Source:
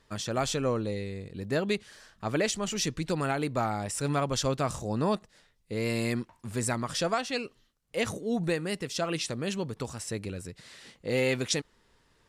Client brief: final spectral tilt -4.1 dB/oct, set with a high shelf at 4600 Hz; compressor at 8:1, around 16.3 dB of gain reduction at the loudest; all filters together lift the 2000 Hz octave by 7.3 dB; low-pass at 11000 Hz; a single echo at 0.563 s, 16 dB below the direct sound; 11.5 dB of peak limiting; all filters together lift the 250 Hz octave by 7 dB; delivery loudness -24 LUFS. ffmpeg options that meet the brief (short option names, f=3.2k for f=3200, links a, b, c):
-af "lowpass=11k,equalizer=f=250:t=o:g=8.5,equalizer=f=2k:t=o:g=7.5,highshelf=f=4.6k:g=7,acompressor=threshold=-36dB:ratio=8,alimiter=level_in=9dB:limit=-24dB:level=0:latency=1,volume=-9dB,aecho=1:1:563:0.158,volume=18.5dB"